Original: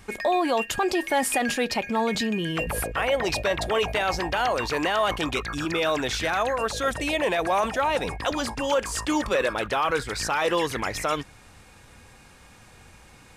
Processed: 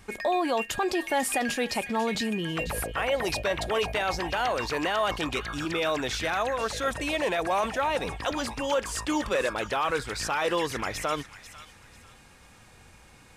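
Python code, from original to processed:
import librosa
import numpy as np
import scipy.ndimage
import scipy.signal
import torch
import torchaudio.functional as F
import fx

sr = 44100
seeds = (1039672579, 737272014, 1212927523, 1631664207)

y = fx.echo_wet_highpass(x, sr, ms=494, feedback_pct=32, hz=1700.0, wet_db=-12)
y = y * 10.0 ** (-3.0 / 20.0)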